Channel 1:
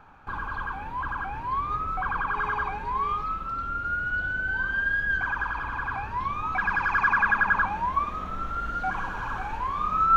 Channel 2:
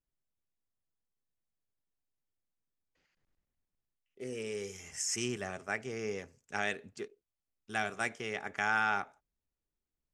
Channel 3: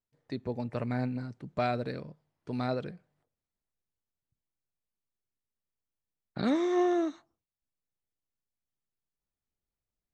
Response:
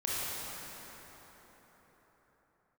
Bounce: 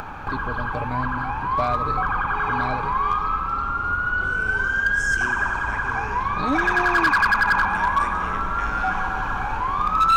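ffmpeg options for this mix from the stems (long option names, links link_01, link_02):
-filter_complex "[0:a]volume=2dB,asplit=2[link_01][link_02];[link_02]volume=-9.5dB[link_03];[1:a]volume=-4.5dB,asplit=2[link_04][link_05];[link_05]volume=-12dB[link_06];[2:a]aecho=1:1:6.8:0.57,volume=1dB[link_07];[3:a]atrim=start_sample=2205[link_08];[link_03][link_06]amix=inputs=2:normalize=0[link_09];[link_09][link_08]afir=irnorm=-1:irlink=0[link_10];[link_01][link_04][link_07][link_10]amix=inputs=4:normalize=0,acompressor=mode=upward:threshold=-22dB:ratio=2.5,volume=13dB,asoftclip=hard,volume=-13dB"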